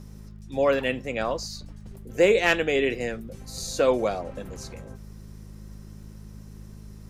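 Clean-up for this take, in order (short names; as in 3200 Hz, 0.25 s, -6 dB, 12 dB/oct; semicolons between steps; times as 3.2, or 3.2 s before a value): clip repair -9.5 dBFS; de-click; de-hum 52.3 Hz, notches 4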